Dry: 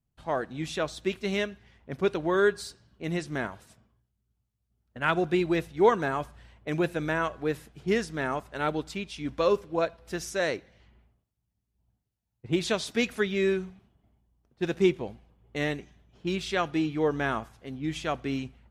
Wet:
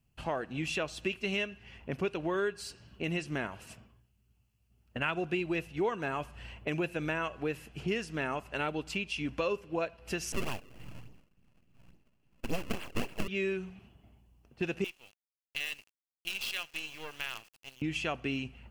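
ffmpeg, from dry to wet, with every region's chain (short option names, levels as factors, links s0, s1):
-filter_complex "[0:a]asettb=1/sr,asplit=3[s0][s1][s2];[s0]atrim=end=10.324[s3];[s1]atrim=start=10.32:end=13.28,asetpts=PTS-STARTPTS,afade=t=in:d=0.004:c=qsin,afade=t=out:st=2.956:d=0.004:c=qsin,lowshelf=f=380:g=10,acrusher=samples=32:mix=1:aa=0.000001:lfo=1:lforange=51.2:lforate=3.5,aeval=exprs='abs(val(0))':c=same[s4];[s2]atrim=start=13.276[s5];[s3][s4]acrossfade=d=0.004:c1=hsin:c2=qsin[s6];[s6][s5]acrossfade=d=0.004:c1=qsin:c2=hsin,asettb=1/sr,asplit=3[s7][s8][s9];[s7]atrim=end=14.844[s10];[s8]atrim=start=14.84:end=17.82,asetpts=PTS-STARTPTS,afade=t=in:d=0.004:c=qsin,afade=t=out:st=2.976:d=0.004:c=qsin,bandpass=f=4100:t=q:w=1.7,acrusher=bits=7:dc=4:mix=0:aa=0.000001[s11];[s9]atrim=start=17.816[s12];[s10][s11]acrossfade=d=0.004:c1=hsin:c2=qsin[s13];[s13][s12]acrossfade=d=0.004:c1=qsin:c2=hsin,equalizer=f=2700:t=o:w=0.26:g=13.5,bandreject=f=3700:w=10,acompressor=threshold=0.00891:ratio=3,volume=2.11"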